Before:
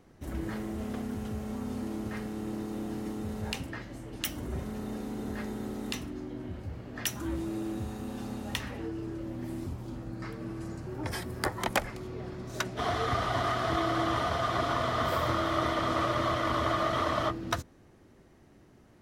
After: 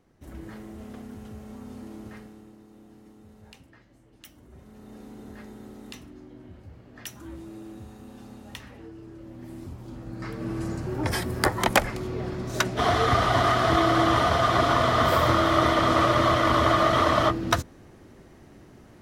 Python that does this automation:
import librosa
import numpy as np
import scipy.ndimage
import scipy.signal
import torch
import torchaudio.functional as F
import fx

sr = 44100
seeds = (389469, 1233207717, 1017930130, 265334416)

y = fx.gain(x, sr, db=fx.line((2.11, -5.5), (2.56, -15.5), (4.49, -15.5), (5.02, -7.0), (9.07, -7.0), (9.98, 0.0), (10.56, 8.0)))